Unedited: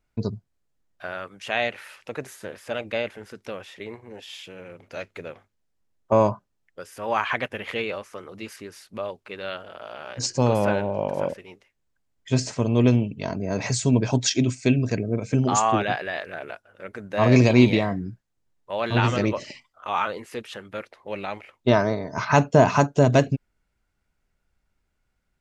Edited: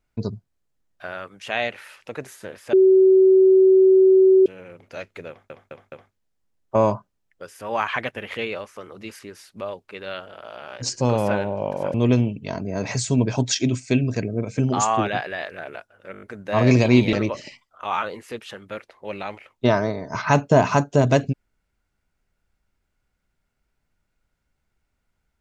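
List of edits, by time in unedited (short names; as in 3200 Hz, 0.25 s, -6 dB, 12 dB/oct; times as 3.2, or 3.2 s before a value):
2.73–4.46 bleep 379 Hz -10 dBFS
5.29 stutter 0.21 s, 4 plays
11.31–12.69 cut
16.87 stutter 0.02 s, 6 plays
17.78–19.16 cut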